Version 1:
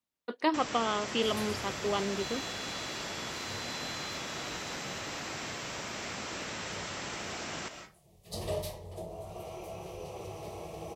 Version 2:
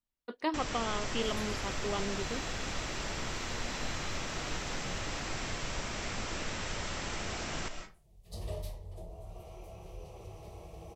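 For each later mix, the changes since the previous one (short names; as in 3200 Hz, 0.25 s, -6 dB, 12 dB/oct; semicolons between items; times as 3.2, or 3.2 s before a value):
speech -5.0 dB; second sound -9.0 dB; master: remove Bessel high-pass 160 Hz, order 2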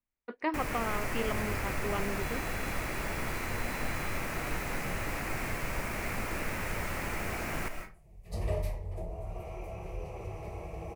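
first sound: remove rippled Chebyshev low-pass 7700 Hz, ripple 3 dB; second sound +7.0 dB; master: add resonant high shelf 2800 Hz -6 dB, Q 3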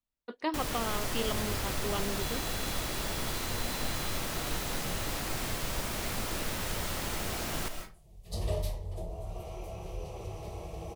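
master: add resonant high shelf 2800 Hz +6 dB, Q 3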